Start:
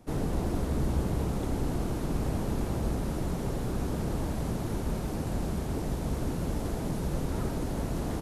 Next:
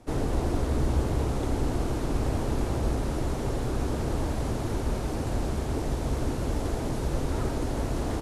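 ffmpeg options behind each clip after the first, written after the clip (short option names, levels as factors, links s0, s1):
-af "lowpass=10000,equalizer=f=180:t=o:w=0.42:g=-11,volume=1.58"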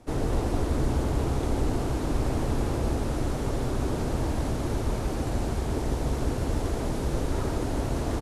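-af "aecho=1:1:147:0.473"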